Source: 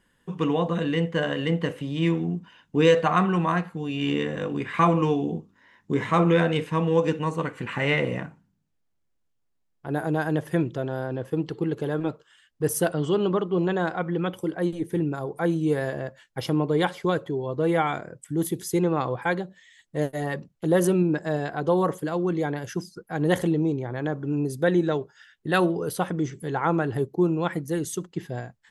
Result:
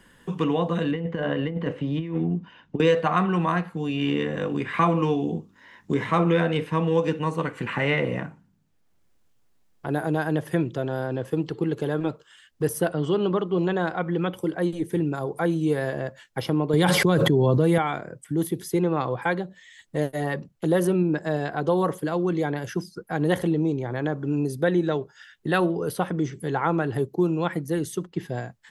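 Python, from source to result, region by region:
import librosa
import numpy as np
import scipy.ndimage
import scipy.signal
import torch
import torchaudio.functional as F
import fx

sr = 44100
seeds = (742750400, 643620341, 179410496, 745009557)

y = fx.chain(x, sr, fx.over_compress(threshold_db=-26.0, ratio=-0.5),
    fx.spacing_loss(db_at_10k=25), at=(0.91, 2.8))
y = fx.chain(y, sr, fx.highpass(hz=120.0, slope=12),
    fx.bass_treble(bass_db=10, treble_db=10),
    fx.env_flatten(amount_pct=100), at=(16.73, 17.78))
y = fx.dynamic_eq(y, sr, hz=7100.0, q=2.8, threshold_db=-57.0, ratio=4.0, max_db=-6)
y = fx.band_squash(y, sr, depth_pct=40)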